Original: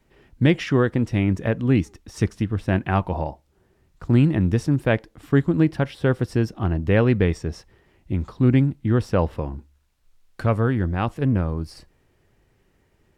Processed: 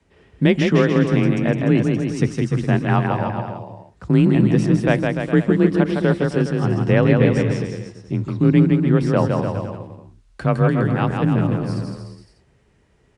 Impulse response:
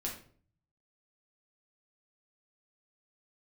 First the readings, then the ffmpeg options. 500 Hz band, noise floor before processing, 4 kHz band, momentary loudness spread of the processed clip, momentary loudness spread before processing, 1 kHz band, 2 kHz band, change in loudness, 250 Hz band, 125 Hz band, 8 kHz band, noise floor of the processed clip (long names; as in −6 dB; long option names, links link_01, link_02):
+4.5 dB, −64 dBFS, +4.0 dB, 12 LU, 11 LU, +4.0 dB, +4.0 dB, +3.5 dB, +4.5 dB, +3.0 dB, can't be measured, −58 dBFS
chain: -filter_complex "[0:a]afreqshift=29,asplit=2[link_01][link_02];[link_02]aecho=0:1:160|296|411.6|509.9|593.4:0.631|0.398|0.251|0.158|0.1[link_03];[link_01][link_03]amix=inputs=2:normalize=0,aresample=22050,aresample=44100,volume=1.5dB"